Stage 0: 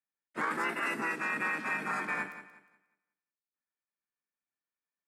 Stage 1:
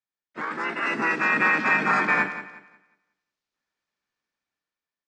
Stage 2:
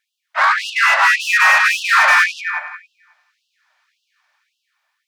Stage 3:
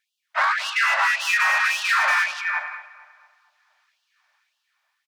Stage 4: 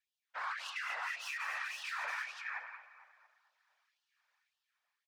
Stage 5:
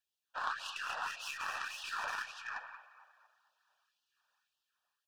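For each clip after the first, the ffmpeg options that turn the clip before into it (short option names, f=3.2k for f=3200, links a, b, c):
-af "lowpass=f=6.1k:w=0.5412,lowpass=f=6.1k:w=1.3066,dynaudnorm=f=280:g=7:m=12.5dB"
-filter_complex "[0:a]asplit=2[a][b];[b]highpass=f=720:p=1,volume=27dB,asoftclip=type=tanh:threshold=-8.5dB[c];[a][c]amix=inputs=2:normalize=0,lowpass=f=1.9k:p=1,volume=-6dB,afftfilt=real='re*gte(b*sr/1024,540*pow(2700/540,0.5+0.5*sin(2*PI*1.8*pts/sr)))':imag='im*gte(b*sr/1024,540*pow(2700/540,0.5+0.5*sin(2*PI*1.8*pts/sr)))':win_size=1024:overlap=0.75,volume=6dB"
-filter_complex "[0:a]acompressor=threshold=-15dB:ratio=6,asplit=2[a][b];[b]adelay=227,lowpass=f=2.1k:p=1,volume=-14dB,asplit=2[c][d];[d]adelay=227,lowpass=f=2.1k:p=1,volume=0.52,asplit=2[e][f];[f]adelay=227,lowpass=f=2.1k:p=1,volume=0.52,asplit=2[g][h];[h]adelay=227,lowpass=f=2.1k:p=1,volume=0.52,asplit=2[i][j];[j]adelay=227,lowpass=f=2.1k:p=1,volume=0.52[k];[a][c][e][g][i][k]amix=inputs=6:normalize=0,volume=-2.5dB"
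-af "alimiter=limit=-20dB:level=0:latency=1:release=438,afftfilt=real='hypot(re,im)*cos(2*PI*random(0))':imag='hypot(re,im)*sin(2*PI*random(1))':win_size=512:overlap=0.75,volume=-6.5dB"
-af "aeval=exprs='0.0501*(cos(1*acos(clip(val(0)/0.0501,-1,1)))-cos(1*PI/2))+0.00158*(cos(2*acos(clip(val(0)/0.0501,-1,1)))-cos(2*PI/2))+0.00891*(cos(3*acos(clip(val(0)/0.0501,-1,1)))-cos(3*PI/2))+0.002*(cos(4*acos(clip(val(0)/0.0501,-1,1)))-cos(4*PI/2))+0.00112*(cos(6*acos(clip(val(0)/0.0501,-1,1)))-cos(6*PI/2))':c=same,asuperstop=centerf=2100:order=4:qfactor=2.6,volume=7.5dB"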